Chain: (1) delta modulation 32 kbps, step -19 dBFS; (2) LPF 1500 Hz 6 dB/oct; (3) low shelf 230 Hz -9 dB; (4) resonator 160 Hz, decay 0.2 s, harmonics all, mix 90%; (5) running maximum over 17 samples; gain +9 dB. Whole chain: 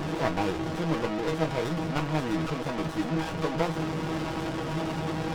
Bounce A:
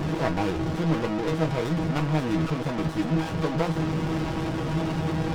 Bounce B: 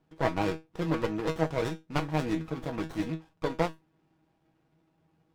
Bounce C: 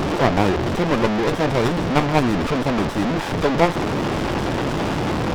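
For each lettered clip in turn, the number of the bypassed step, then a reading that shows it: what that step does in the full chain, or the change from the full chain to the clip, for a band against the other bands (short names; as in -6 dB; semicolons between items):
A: 3, 125 Hz band +5.0 dB; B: 1, 8 kHz band -2.5 dB; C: 4, momentary loudness spread change +2 LU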